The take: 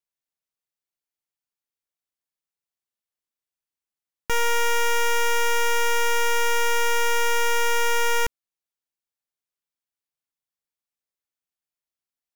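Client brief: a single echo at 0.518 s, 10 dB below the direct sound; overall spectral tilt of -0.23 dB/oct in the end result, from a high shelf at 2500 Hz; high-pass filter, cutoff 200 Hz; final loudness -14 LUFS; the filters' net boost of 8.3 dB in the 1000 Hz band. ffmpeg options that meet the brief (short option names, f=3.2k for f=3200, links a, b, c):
-af "highpass=200,equalizer=f=1k:t=o:g=8.5,highshelf=f=2.5k:g=7,aecho=1:1:518:0.316,volume=2.5dB"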